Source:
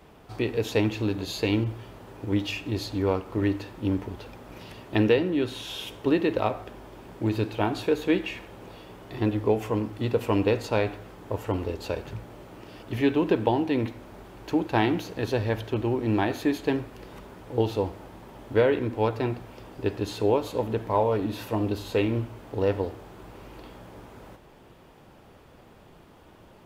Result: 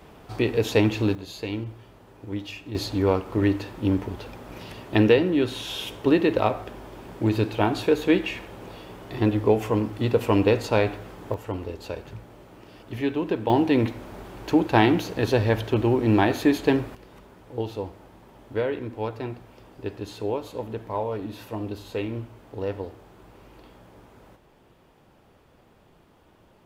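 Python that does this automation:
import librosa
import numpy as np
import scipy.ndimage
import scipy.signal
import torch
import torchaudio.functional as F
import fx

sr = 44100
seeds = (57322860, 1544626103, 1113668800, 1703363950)

y = fx.gain(x, sr, db=fx.steps((0.0, 4.0), (1.15, -6.0), (2.75, 3.5), (11.34, -3.0), (13.5, 5.0), (16.95, -5.0)))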